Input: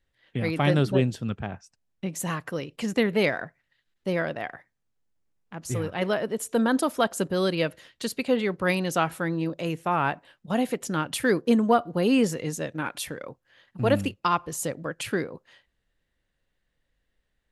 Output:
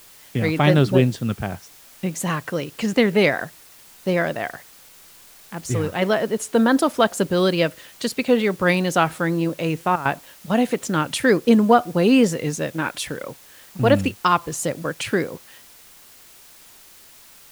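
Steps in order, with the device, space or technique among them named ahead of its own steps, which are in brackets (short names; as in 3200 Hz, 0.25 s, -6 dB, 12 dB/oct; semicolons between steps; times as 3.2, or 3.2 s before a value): worn cassette (LPF 9500 Hz; wow and flutter; level dips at 9.96, 93 ms -12 dB; white noise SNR 26 dB); gain +6 dB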